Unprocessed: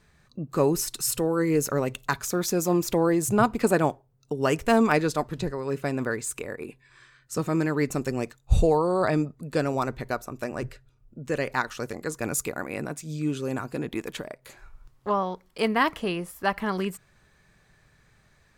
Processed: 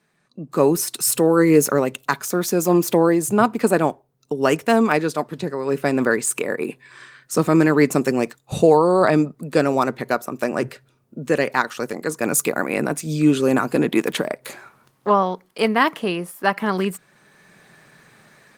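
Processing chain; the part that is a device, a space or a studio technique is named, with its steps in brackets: video call (HPF 160 Hz 24 dB/oct; AGC gain up to 16 dB; gain -1.5 dB; Opus 32 kbps 48000 Hz)

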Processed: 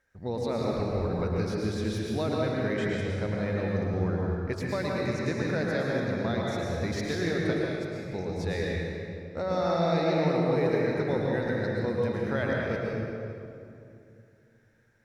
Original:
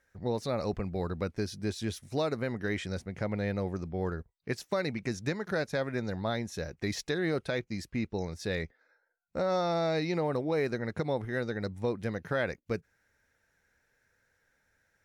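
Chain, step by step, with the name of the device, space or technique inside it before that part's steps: 7.53–8.05 passive tone stack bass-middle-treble 5-5-5; swimming-pool hall (reverb RT60 2.6 s, pre-delay 0.103 s, DRR -3.5 dB; high shelf 5900 Hz -5 dB); gain -1.5 dB

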